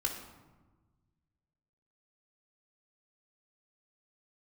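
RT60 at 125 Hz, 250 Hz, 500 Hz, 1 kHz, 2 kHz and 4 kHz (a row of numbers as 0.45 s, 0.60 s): 2.2 s, 1.8 s, 1.3 s, 1.2 s, 0.90 s, 0.70 s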